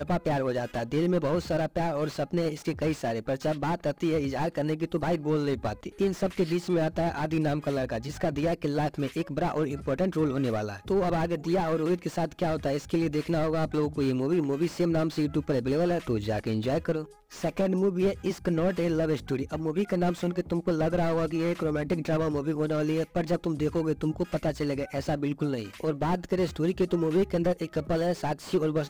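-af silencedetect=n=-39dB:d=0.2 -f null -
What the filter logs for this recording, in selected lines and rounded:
silence_start: 17.05
silence_end: 17.32 | silence_duration: 0.27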